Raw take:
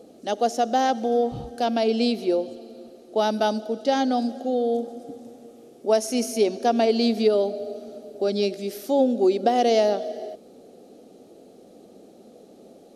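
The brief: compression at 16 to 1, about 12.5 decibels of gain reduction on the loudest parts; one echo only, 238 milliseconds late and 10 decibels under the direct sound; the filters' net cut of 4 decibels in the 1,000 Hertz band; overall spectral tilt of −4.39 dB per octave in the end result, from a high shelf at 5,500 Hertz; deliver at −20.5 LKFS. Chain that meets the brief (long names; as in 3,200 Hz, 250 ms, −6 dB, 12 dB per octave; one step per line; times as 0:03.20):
parametric band 1,000 Hz −6.5 dB
high-shelf EQ 5,500 Hz −5.5 dB
downward compressor 16 to 1, threshold −28 dBFS
single-tap delay 238 ms −10 dB
level +13 dB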